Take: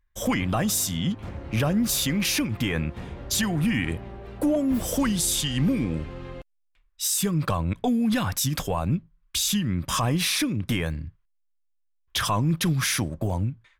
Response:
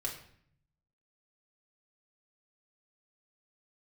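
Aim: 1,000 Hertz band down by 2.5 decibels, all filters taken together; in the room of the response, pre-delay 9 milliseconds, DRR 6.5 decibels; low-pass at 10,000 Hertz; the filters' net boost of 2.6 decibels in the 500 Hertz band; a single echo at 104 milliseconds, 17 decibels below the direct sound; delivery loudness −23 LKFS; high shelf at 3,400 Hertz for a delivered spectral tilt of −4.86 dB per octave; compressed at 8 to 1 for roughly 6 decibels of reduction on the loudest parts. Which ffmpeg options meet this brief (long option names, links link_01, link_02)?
-filter_complex "[0:a]lowpass=10000,equalizer=frequency=500:width_type=o:gain=4.5,equalizer=frequency=1000:width_type=o:gain=-4,highshelf=frequency=3400:gain=-7.5,acompressor=threshold=-25dB:ratio=8,aecho=1:1:104:0.141,asplit=2[link_01][link_02];[1:a]atrim=start_sample=2205,adelay=9[link_03];[link_02][link_03]afir=irnorm=-1:irlink=0,volume=-8dB[link_04];[link_01][link_04]amix=inputs=2:normalize=0,volume=6.5dB"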